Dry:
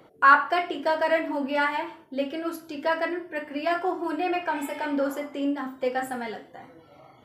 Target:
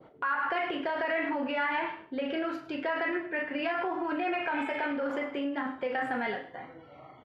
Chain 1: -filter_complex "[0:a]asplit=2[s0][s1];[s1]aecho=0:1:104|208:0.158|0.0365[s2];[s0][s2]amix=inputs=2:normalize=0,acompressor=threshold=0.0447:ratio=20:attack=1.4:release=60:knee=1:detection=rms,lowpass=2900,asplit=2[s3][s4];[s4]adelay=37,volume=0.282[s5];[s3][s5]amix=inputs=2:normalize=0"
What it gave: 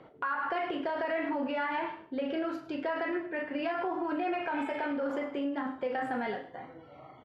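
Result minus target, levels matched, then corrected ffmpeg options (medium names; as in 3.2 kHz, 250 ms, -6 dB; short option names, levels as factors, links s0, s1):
2 kHz band -3.0 dB
-filter_complex "[0:a]asplit=2[s0][s1];[s1]aecho=0:1:104|208:0.158|0.0365[s2];[s0][s2]amix=inputs=2:normalize=0,acompressor=threshold=0.0447:ratio=20:attack=1.4:release=60:knee=1:detection=rms,adynamicequalizer=threshold=0.00355:dfrequency=2200:dqfactor=0.91:tfrequency=2200:tqfactor=0.91:attack=5:release=100:ratio=0.438:range=3:mode=boostabove:tftype=bell,lowpass=2900,asplit=2[s3][s4];[s4]adelay=37,volume=0.282[s5];[s3][s5]amix=inputs=2:normalize=0"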